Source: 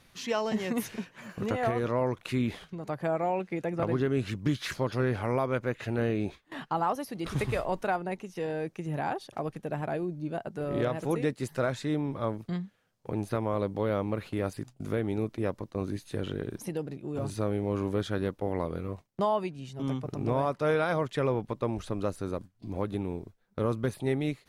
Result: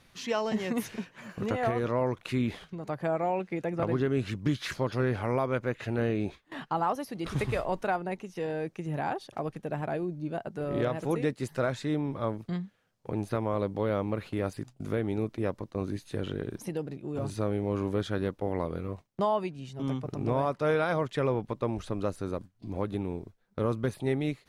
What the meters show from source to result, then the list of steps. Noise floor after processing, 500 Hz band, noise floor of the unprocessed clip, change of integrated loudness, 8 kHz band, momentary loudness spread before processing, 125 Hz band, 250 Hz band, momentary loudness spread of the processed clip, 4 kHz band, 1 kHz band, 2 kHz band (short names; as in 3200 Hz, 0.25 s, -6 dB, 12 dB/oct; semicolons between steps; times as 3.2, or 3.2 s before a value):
-65 dBFS, 0.0 dB, -65 dBFS, 0.0 dB, -1.5 dB, 8 LU, 0.0 dB, 0.0 dB, 8 LU, -0.5 dB, 0.0 dB, 0.0 dB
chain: high shelf 9900 Hz -5 dB